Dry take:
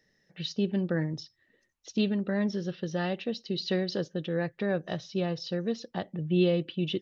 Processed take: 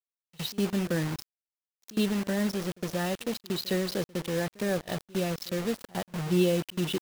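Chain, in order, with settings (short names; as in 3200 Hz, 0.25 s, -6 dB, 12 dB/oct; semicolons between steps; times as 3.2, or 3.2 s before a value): bit-crush 6-bit; reverse echo 61 ms -22.5 dB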